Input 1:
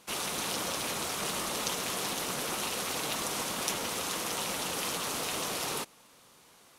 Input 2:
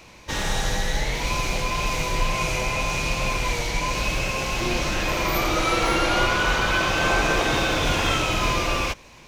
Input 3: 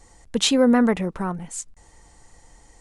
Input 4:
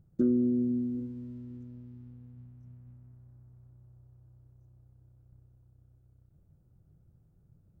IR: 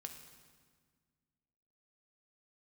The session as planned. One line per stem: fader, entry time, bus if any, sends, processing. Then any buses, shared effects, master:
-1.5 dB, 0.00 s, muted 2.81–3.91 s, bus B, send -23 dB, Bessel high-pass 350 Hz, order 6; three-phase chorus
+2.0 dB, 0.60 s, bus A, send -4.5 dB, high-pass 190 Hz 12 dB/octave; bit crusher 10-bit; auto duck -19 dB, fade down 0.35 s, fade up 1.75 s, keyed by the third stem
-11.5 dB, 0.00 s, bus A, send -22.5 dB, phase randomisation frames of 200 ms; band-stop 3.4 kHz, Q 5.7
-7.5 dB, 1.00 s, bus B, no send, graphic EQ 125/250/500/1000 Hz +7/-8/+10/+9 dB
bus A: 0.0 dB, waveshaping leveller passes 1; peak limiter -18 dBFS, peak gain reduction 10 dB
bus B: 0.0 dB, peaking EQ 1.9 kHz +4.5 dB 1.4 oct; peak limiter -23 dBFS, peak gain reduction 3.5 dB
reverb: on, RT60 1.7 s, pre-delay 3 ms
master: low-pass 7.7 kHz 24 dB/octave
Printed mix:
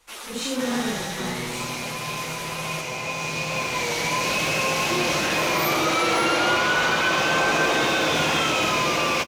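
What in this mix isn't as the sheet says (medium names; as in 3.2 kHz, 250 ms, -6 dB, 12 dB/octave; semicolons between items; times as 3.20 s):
stem 2: entry 0.60 s -> 0.30 s; master: missing low-pass 7.7 kHz 24 dB/octave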